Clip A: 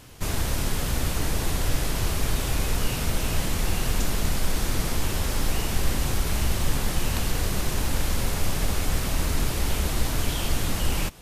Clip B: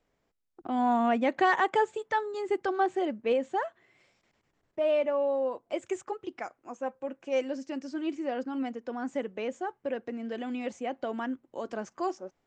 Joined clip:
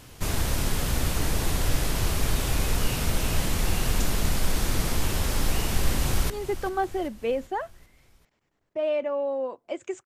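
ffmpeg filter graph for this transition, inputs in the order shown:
ffmpeg -i cue0.wav -i cue1.wav -filter_complex "[0:a]apad=whole_dur=10.05,atrim=end=10.05,atrim=end=6.302[link_01];[1:a]atrim=start=2.318:end=6.07[link_02];[link_01][link_02]acrossfade=duration=0.004:curve1=hsin:curve2=hsin,asplit=2[link_03][link_04];[link_04]afade=type=in:start_time=5.65:duration=0.01,afade=type=out:start_time=6.3:duration=0.01,aecho=0:1:390|780|1170|1560|1950:0.188365|0.103601|0.0569804|0.0313392|0.0172366[link_05];[link_03][link_05]amix=inputs=2:normalize=0" out.wav

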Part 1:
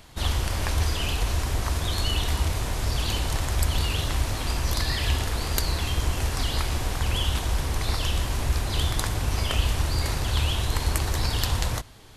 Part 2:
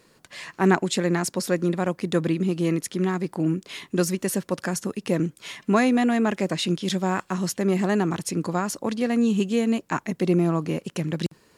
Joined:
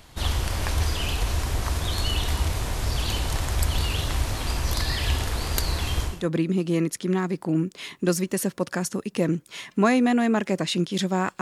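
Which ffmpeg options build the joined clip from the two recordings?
ffmpeg -i cue0.wav -i cue1.wav -filter_complex "[0:a]apad=whole_dur=11.41,atrim=end=11.41,atrim=end=6.31,asetpts=PTS-STARTPTS[link_01];[1:a]atrim=start=1.92:end=7.32,asetpts=PTS-STARTPTS[link_02];[link_01][link_02]acrossfade=duration=0.3:curve1=qua:curve2=qua" out.wav

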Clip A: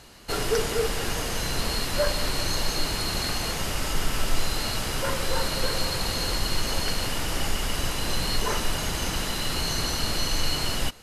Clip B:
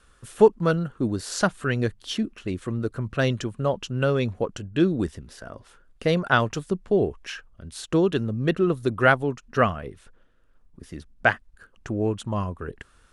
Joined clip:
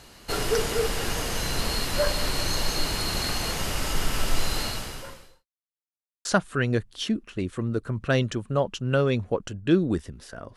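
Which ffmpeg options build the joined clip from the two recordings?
ffmpeg -i cue0.wav -i cue1.wav -filter_complex "[0:a]apad=whole_dur=10.56,atrim=end=10.56,asplit=2[link_01][link_02];[link_01]atrim=end=5.46,asetpts=PTS-STARTPTS,afade=type=out:start_time=4.6:duration=0.86:curve=qua[link_03];[link_02]atrim=start=5.46:end=6.25,asetpts=PTS-STARTPTS,volume=0[link_04];[1:a]atrim=start=1.34:end=5.65,asetpts=PTS-STARTPTS,afade=type=in:duration=0.004:curve=hsin[link_05];[link_03][link_04][link_05]concat=n=3:v=0:a=1" out.wav

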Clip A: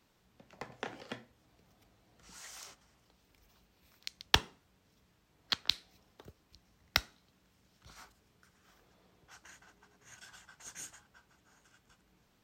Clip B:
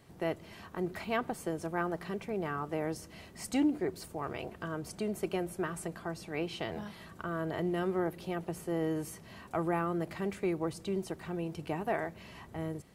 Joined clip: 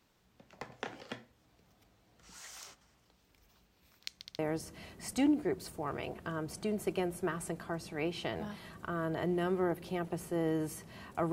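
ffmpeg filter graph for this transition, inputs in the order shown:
ffmpeg -i cue0.wav -i cue1.wav -filter_complex "[0:a]apad=whole_dur=11.32,atrim=end=11.32,asplit=3[link_01][link_02][link_03];[link_01]atrim=end=4.252[link_04];[link_02]atrim=start=4.178:end=4.252[link_05];[link_03]atrim=start=4.178:end=4.252[link_06];[1:a]atrim=start=2.748:end=9.68[link_07];[link_04][link_05]acrossfade=duration=0.004:curve1=hsin:curve2=hsin[link_08];[link_08][link_06]acrossfade=duration=0.004:curve1=hsin:curve2=hsin[link_09];[link_09][link_07]acrossfade=duration=0.004:curve1=hsin:curve2=hsin" out.wav

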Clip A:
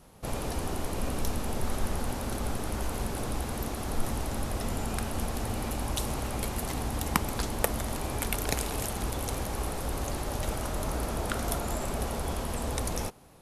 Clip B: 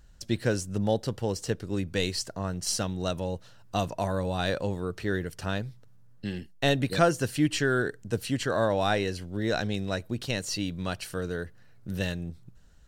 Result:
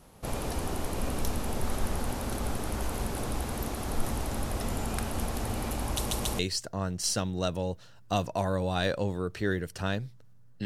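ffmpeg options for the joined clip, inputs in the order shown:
ffmpeg -i cue0.wav -i cue1.wav -filter_complex "[0:a]apad=whole_dur=10.65,atrim=end=10.65,asplit=3[link_01][link_02][link_03];[link_01]atrim=end=6.112[link_04];[link_02]atrim=start=5.968:end=6.112[link_05];[link_03]atrim=start=5.968:end=6.112[link_06];[1:a]atrim=start=2.018:end=6.28[link_07];[link_04][link_05]acrossfade=duration=0.004:curve1=hsin:curve2=hsin[link_08];[link_08][link_06]acrossfade=duration=0.004:curve1=hsin:curve2=hsin[link_09];[link_09][link_07]acrossfade=duration=0.004:curve1=hsin:curve2=hsin" out.wav

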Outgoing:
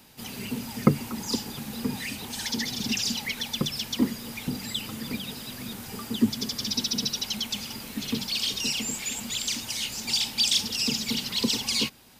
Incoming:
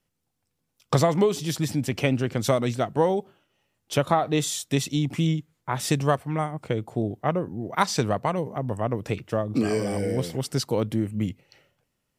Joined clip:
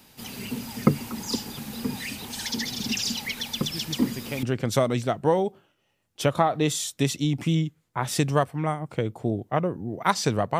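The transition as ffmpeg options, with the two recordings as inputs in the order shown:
ffmpeg -i cue0.wav -i cue1.wav -filter_complex "[1:a]asplit=2[link_01][link_02];[0:a]apad=whole_dur=10.59,atrim=end=10.59,atrim=end=4.432[link_03];[link_02]atrim=start=2.148:end=8.31[link_04];[link_01]atrim=start=1.35:end=2.15,asetpts=PTS-STARTPTS,volume=-9.5dB,afade=type=in:duration=0.004:curve=hsin,afade=type=out:start_time=0.796:duration=0.004:curve=hsin,adelay=3630[link_05];[link_03][link_04]acrossfade=duration=0.004:curve1=hsin:curve2=hsin[link_06];[link_06][link_05]amix=inputs=2:normalize=0" out.wav

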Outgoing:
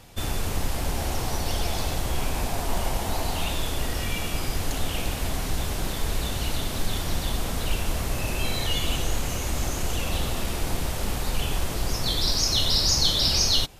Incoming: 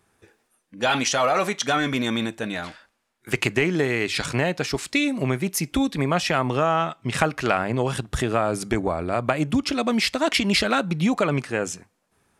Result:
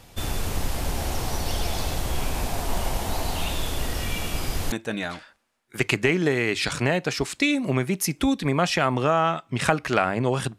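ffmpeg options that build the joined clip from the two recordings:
ffmpeg -i cue0.wav -i cue1.wav -filter_complex "[0:a]apad=whole_dur=10.58,atrim=end=10.58,atrim=end=4.722[link_01];[1:a]atrim=start=2.248:end=8.11[link_02];[link_01][link_02]acrossfade=duration=0.004:curve1=hsin:curve2=hsin" out.wav

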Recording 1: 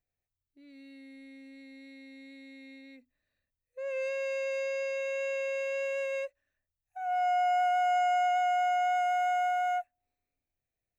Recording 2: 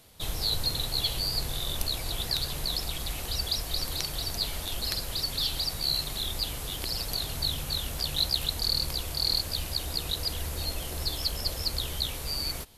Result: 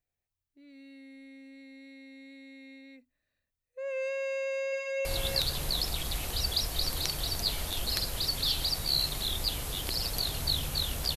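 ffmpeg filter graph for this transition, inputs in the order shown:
ffmpeg -i cue0.wav -i cue1.wav -filter_complex "[0:a]apad=whole_dur=11.16,atrim=end=11.16,atrim=end=5.052[link_01];[1:a]atrim=start=1.998:end=8.11[link_02];[link_01][link_02]acrossfade=duration=0.004:curve1=hsin:curve2=hsin,asplit=2[link_03][link_04];[link_04]afade=type=in:start_time=4.37:duration=0.01,afade=type=out:start_time=5.05:duration=0.01,aecho=0:1:350|700|1050:0.562341|0.0843512|0.0126527[link_05];[link_03][link_05]amix=inputs=2:normalize=0" out.wav

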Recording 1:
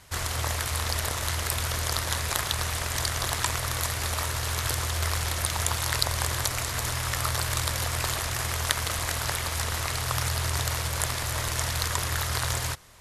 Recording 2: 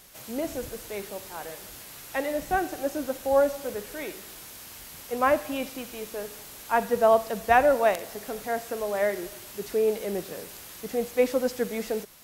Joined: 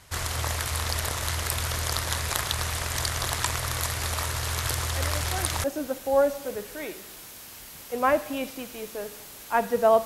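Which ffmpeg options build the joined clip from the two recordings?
ffmpeg -i cue0.wav -i cue1.wav -filter_complex "[1:a]asplit=2[link_01][link_02];[0:a]apad=whole_dur=10.05,atrim=end=10.05,atrim=end=5.642[link_03];[link_02]atrim=start=2.828:end=7.24[link_04];[link_01]atrim=start=1.91:end=2.83,asetpts=PTS-STARTPTS,volume=-10dB,afade=type=in:duration=0.004:curve=hsin,afade=type=out:start_time=0.916:duration=0.004:curve=hsin,adelay=4720[link_05];[link_03][link_04]acrossfade=duration=0.004:curve1=hsin:curve2=hsin[link_06];[link_06][link_05]amix=inputs=2:normalize=0" out.wav

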